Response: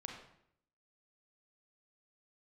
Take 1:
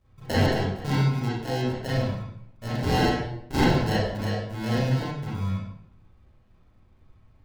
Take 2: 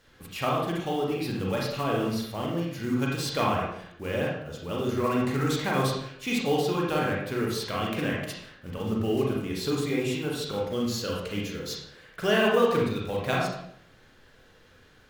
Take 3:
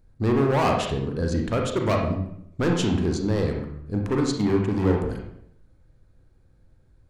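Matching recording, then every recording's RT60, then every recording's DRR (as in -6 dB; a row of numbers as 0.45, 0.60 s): 3; 0.70, 0.70, 0.70 s; -10.0, -3.5, 1.0 dB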